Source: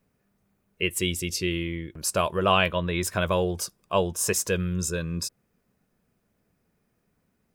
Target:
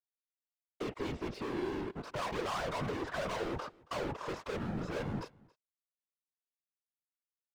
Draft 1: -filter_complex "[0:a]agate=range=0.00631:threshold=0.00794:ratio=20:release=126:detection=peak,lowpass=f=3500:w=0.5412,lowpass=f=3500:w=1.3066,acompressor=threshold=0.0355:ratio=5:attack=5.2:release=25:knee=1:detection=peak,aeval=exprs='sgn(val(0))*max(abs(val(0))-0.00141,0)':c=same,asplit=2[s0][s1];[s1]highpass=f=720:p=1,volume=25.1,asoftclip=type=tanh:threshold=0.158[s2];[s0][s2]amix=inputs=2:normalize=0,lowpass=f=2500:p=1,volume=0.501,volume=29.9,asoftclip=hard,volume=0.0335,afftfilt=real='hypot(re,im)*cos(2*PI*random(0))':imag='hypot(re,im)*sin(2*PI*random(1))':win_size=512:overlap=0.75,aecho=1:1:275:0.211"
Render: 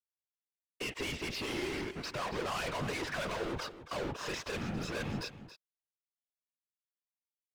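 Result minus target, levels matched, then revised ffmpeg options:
echo-to-direct +11.5 dB; 4 kHz band +5.5 dB
-filter_complex "[0:a]agate=range=0.00631:threshold=0.00794:ratio=20:release=126:detection=peak,lowpass=f=3500:w=0.5412,lowpass=f=3500:w=1.3066,acompressor=threshold=0.0355:ratio=5:attack=5.2:release=25:knee=1:detection=peak,highshelf=f=1600:t=q:w=1.5:g=-13,aeval=exprs='sgn(val(0))*max(abs(val(0))-0.00141,0)':c=same,asplit=2[s0][s1];[s1]highpass=f=720:p=1,volume=25.1,asoftclip=type=tanh:threshold=0.158[s2];[s0][s2]amix=inputs=2:normalize=0,lowpass=f=2500:p=1,volume=0.501,volume=29.9,asoftclip=hard,volume=0.0335,afftfilt=real='hypot(re,im)*cos(2*PI*random(0))':imag='hypot(re,im)*sin(2*PI*random(1))':win_size=512:overlap=0.75,aecho=1:1:275:0.0562"

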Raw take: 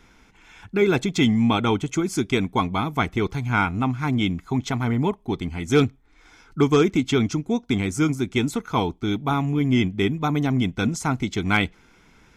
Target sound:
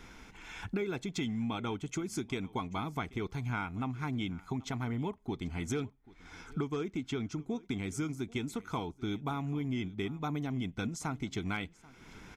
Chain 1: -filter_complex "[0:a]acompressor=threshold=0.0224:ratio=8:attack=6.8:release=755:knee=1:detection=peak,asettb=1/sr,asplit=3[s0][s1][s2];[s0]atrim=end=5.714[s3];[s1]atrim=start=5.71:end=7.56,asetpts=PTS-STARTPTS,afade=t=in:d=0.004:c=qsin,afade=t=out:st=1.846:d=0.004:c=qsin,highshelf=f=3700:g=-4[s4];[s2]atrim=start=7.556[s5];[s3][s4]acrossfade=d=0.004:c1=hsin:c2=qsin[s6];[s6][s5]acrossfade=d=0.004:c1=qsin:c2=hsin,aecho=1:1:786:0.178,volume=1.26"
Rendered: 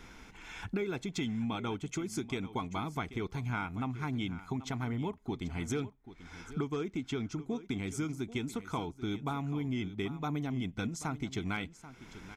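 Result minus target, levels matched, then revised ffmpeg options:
echo-to-direct +7 dB
-filter_complex "[0:a]acompressor=threshold=0.0224:ratio=8:attack=6.8:release=755:knee=1:detection=peak,asettb=1/sr,asplit=3[s0][s1][s2];[s0]atrim=end=5.714[s3];[s1]atrim=start=5.71:end=7.56,asetpts=PTS-STARTPTS,afade=t=in:d=0.004:c=qsin,afade=t=out:st=1.846:d=0.004:c=qsin,highshelf=f=3700:g=-4[s4];[s2]atrim=start=7.556[s5];[s3][s4]acrossfade=d=0.004:c1=hsin:c2=qsin[s6];[s6][s5]acrossfade=d=0.004:c1=qsin:c2=hsin,aecho=1:1:786:0.0794,volume=1.26"

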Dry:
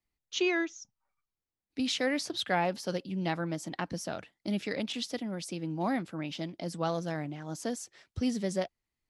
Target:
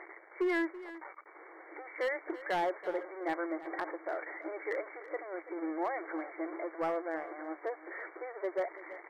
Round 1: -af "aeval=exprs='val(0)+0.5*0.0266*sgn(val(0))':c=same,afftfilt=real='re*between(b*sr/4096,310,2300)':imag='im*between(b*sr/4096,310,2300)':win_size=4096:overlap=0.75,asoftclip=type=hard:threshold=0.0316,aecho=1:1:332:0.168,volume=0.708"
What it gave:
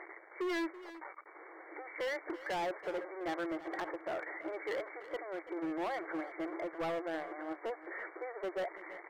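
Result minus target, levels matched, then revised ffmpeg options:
hard clipper: distortion +9 dB
-af "aeval=exprs='val(0)+0.5*0.0266*sgn(val(0))':c=same,afftfilt=real='re*between(b*sr/4096,310,2300)':imag='im*between(b*sr/4096,310,2300)':win_size=4096:overlap=0.75,asoftclip=type=hard:threshold=0.0668,aecho=1:1:332:0.168,volume=0.708"

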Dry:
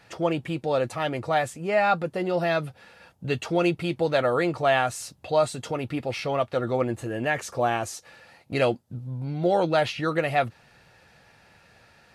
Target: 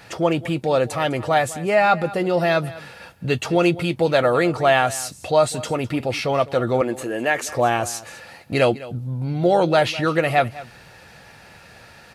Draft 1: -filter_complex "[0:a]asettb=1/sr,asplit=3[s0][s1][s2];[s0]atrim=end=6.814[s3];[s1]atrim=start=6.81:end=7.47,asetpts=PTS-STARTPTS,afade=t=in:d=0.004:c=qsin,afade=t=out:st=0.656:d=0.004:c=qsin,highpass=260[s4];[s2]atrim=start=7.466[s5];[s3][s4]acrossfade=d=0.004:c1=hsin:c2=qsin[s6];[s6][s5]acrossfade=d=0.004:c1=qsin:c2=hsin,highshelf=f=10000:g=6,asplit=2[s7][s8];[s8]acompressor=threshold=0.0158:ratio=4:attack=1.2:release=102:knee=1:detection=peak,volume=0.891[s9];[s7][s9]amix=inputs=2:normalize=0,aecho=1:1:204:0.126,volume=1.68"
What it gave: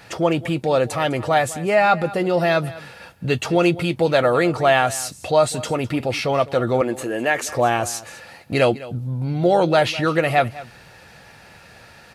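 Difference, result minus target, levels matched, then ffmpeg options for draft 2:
compression: peak gain reduction -5 dB
-filter_complex "[0:a]asettb=1/sr,asplit=3[s0][s1][s2];[s0]atrim=end=6.814[s3];[s1]atrim=start=6.81:end=7.47,asetpts=PTS-STARTPTS,afade=t=in:d=0.004:c=qsin,afade=t=out:st=0.656:d=0.004:c=qsin,highpass=260[s4];[s2]atrim=start=7.466[s5];[s3][s4]acrossfade=d=0.004:c1=hsin:c2=qsin[s6];[s6][s5]acrossfade=d=0.004:c1=qsin:c2=hsin,highshelf=f=10000:g=6,asplit=2[s7][s8];[s8]acompressor=threshold=0.00708:ratio=4:attack=1.2:release=102:knee=1:detection=peak,volume=0.891[s9];[s7][s9]amix=inputs=2:normalize=0,aecho=1:1:204:0.126,volume=1.68"

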